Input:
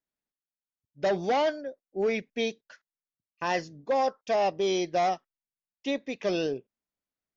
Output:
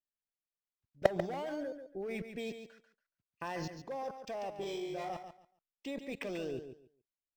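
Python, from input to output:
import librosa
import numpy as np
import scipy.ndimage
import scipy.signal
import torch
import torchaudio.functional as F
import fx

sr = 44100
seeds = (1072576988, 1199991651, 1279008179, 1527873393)

p1 = fx.comb_fb(x, sr, f0_hz=52.0, decay_s=0.58, harmonics='all', damping=0.0, mix_pct=100, at=(4.5, 5.1))
p2 = fx.level_steps(p1, sr, step_db=23)
p3 = fx.low_shelf(p2, sr, hz=69.0, db=11.5)
p4 = p3 + fx.echo_feedback(p3, sr, ms=141, feedback_pct=20, wet_db=-9, dry=0)
p5 = np.interp(np.arange(len(p4)), np.arange(len(p4))[::4], p4[::4])
y = F.gain(torch.from_numpy(p5), 7.0).numpy()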